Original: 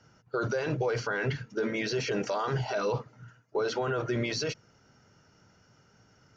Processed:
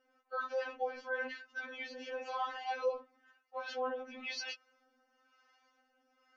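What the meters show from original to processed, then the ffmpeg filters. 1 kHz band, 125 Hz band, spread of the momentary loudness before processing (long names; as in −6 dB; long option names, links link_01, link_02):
−4.0 dB, below −40 dB, 6 LU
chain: -filter_complex "[0:a]acrossover=split=630[link_01][link_02];[link_01]aeval=exprs='val(0)*(1-0.7/2+0.7/2*cos(2*PI*1*n/s))':channel_layout=same[link_03];[link_02]aeval=exprs='val(0)*(1-0.7/2-0.7/2*cos(2*PI*1*n/s))':channel_layout=same[link_04];[link_03][link_04]amix=inputs=2:normalize=0,acrossover=split=450 4300:gain=0.178 1 0.126[link_05][link_06][link_07];[link_05][link_06][link_07]amix=inputs=3:normalize=0,afftfilt=real='re*3.46*eq(mod(b,12),0)':imag='im*3.46*eq(mod(b,12),0)':win_size=2048:overlap=0.75,volume=1dB"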